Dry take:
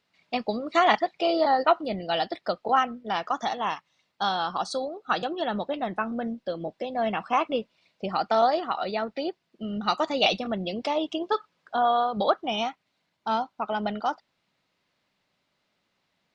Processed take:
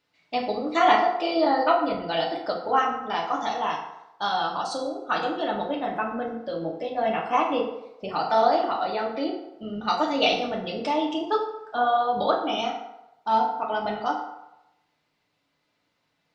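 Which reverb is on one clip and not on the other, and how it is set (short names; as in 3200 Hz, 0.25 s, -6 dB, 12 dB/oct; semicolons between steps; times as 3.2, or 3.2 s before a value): FDN reverb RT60 0.9 s, low-frequency decay 0.75×, high-frequency decay 0.6×, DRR -1.5 dB; gain -2.5 dB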